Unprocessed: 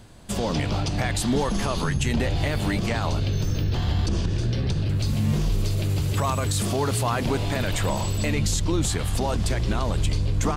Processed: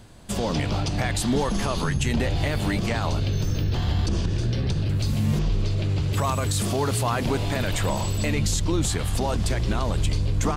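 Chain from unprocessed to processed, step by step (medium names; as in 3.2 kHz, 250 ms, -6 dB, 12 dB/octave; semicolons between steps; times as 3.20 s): 5.39–6.13 s: low-pass 4.8 kHz 12 dB/octave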